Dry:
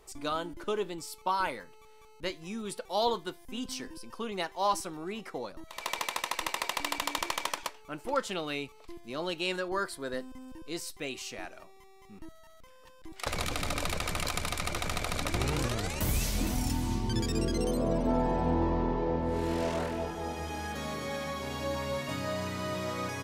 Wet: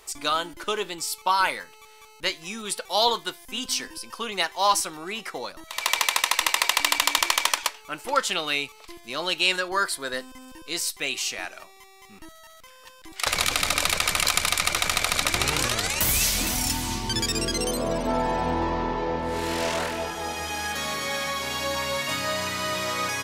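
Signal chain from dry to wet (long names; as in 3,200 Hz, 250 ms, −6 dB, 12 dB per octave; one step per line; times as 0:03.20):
tilt shelving filter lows −7.5 dB, about 790 Hz
level +6 dB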